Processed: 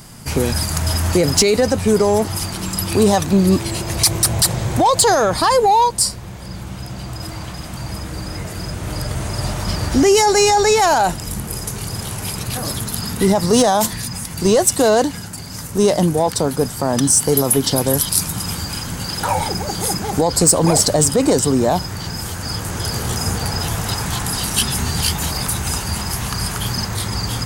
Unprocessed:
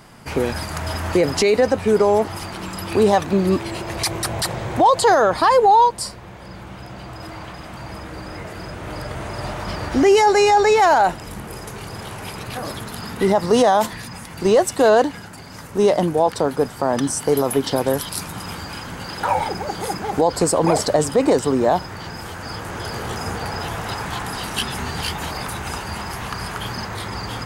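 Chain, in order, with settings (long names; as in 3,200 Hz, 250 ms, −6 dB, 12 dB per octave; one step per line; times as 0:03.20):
bass and treble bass +9 dB, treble +14 dB
soft clipping −3.5 dBFS, distortion −22 dB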